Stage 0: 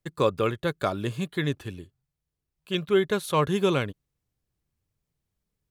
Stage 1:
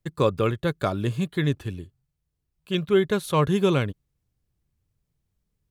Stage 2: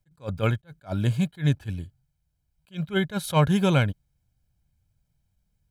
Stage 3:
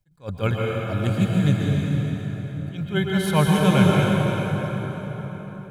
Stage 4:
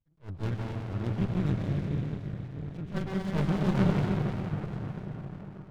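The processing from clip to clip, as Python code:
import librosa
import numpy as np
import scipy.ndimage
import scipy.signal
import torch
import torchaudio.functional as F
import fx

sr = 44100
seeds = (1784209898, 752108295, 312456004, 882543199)

y1 = fx.low_shelf(x, sr, hz=220.0, db=7.5)
y2 = y1 + 0.6 * np.pad(y1, (int(1.3 * sr / 1000.0), 0))[:len(y1)]
y2 = fx.attack_slew(y2, sr, db_per_s=310.0)
y2 = F.gain(torch.from_numpy(y2), 1.0).numpy()
y3 = fx.rev_plate(y2, sr, seeds[0], rt60_s=4.9, hf_ratio=0.65, predelay_ms=105, drr_db=-3.5)
y4 = fx.filter_sweep_lowpass(y3, sr, from_hz=3800.0, to_hz=1700.0, start_s=4.02, end_s=4.64, q=0.71)
y4 = y4 + 10.0 ** (-20.5 / 20.0) * np.pad(y4, (int(965 * sr / 1000.0), 0))[:len(y4)]
y4 = fx.running_max(y4, sr, window=65)
y4 = F.gain(torch.from_numpy(y4), -7.0).numpy()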